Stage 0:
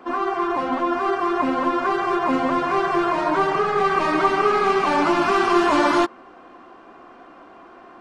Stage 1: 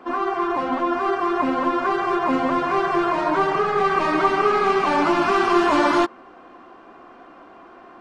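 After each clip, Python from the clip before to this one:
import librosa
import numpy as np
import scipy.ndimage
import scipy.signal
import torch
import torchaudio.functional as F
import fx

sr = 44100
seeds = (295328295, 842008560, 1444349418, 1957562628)

y = fx.high_shelf(x, sr, hz=7400.0, db=-4.5)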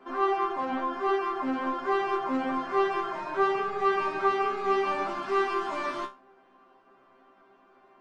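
y = fx.rider(x, sr, range_db=10, speed_s=0.5)
y = fx.resonator_bank(y, sr, root=48, chord='fifth', decay_s=0.24)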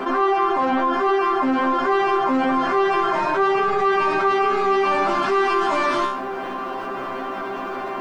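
y = fx.env_flatten(x, sr, amount_pct=70)
y = y * 10.0 ** (4.0 / 20.0)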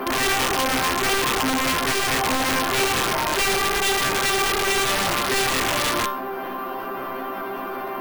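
y = np.repeat(scipy.signal.resample_poly(x, 1, 3), 3)[:len(x)]
y = (np.mod(10.0 ** (14.5 / 20.0) * y + 1.0, 2.0) - 1.0) / 10.0 ** (14.5 / 20.0)
y = y * 10.0 ** (-1.5 / 20.0)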